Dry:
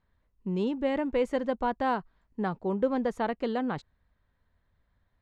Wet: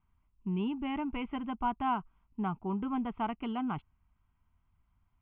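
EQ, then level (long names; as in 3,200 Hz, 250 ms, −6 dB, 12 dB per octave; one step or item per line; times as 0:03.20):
Butterworth low-pass 3,500 Hz 72 dB per octave
phaser with its sweep stopped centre 2,600 Hz, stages 8
0.0 dB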